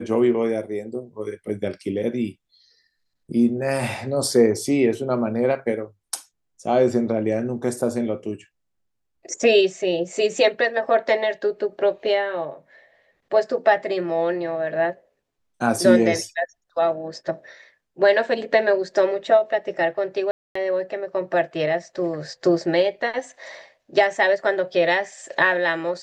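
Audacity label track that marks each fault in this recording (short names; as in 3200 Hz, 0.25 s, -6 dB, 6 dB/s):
20.310000	20.550000	gap 0.244 s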